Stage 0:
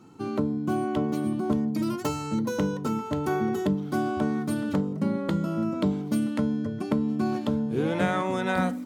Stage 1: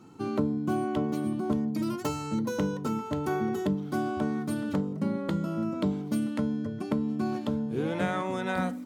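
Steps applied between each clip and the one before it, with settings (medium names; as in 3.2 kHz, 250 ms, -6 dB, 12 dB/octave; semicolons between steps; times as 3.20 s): gain riding 2 s; trim -3 dB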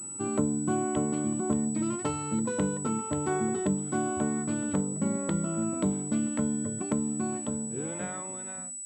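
fade out at the end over 2.03 s; class-D stage that switches slowly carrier 7.9 kHz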